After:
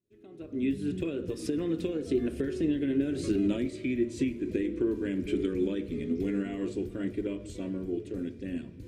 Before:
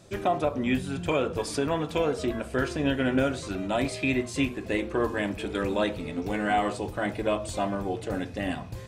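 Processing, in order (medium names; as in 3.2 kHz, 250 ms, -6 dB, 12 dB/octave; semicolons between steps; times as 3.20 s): Doppler pass-by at 3.49 s, 19 m/s, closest 1.1 m; recorder AGC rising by 45 dB/s; FFT filter 150 Hz 0 dB, 360 Hz +9 dB, 790 Hz -20 dB, 2.2 kHz -4 dB, 4.7 kHz -6 dB; reverberation RT60 3.4 s, pre-delay 55 ms, DRR 19.5 dB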